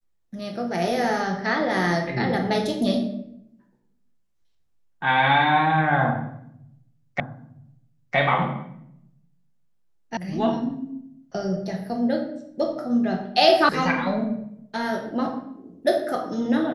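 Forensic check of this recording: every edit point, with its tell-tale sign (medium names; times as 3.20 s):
7.20 s: repeat of the last 0.96 s
10.17 s: sound stops dead
13.69 s: sound stops dead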